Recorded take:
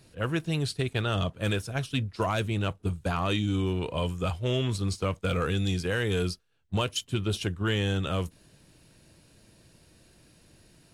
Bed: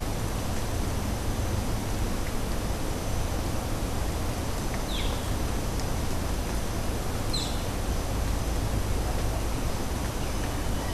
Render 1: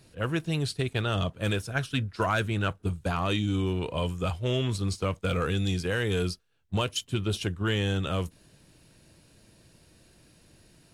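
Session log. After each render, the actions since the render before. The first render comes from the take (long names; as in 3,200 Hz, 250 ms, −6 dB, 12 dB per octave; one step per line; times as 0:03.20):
0:01.70–0:02.83: parametric band 1,500 Hz +8 dB 0.51 octaves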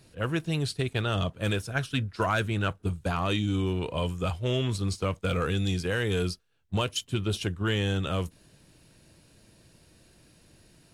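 no processing that can be heard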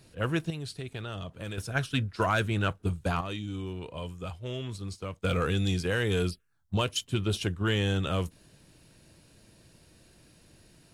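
0:00.50–0:01.58: downward compressor 3 to 1, threshold −37 dBFS
0:03.21–0:05.22: clip gain −8.5 dB
0:06.30–0:06.79: phaser swept by the level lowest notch 360 Hz, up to 1,800 Hz, full sweep at −32 dBFS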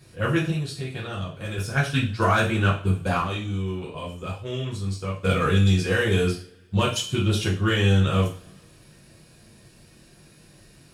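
coupled-rooms reverb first 0.39 s, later 1.8 s, from −27 dB, DRR −5.5 dB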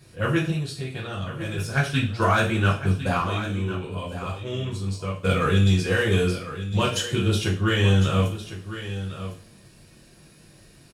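single-tap delay 1,055 ms −12 dB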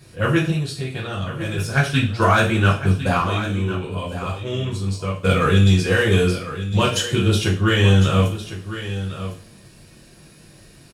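level +4.5 dB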